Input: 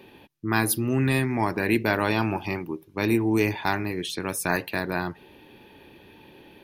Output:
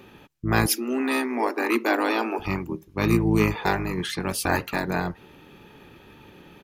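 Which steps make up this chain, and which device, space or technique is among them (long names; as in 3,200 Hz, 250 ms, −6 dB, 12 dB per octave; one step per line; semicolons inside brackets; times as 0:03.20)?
octave pedal (pitch-shifted copies added −12 semitones −3 dB)
0:00.67–0:02.39: Butterworth high-pass 230 Hz 96 dB per octave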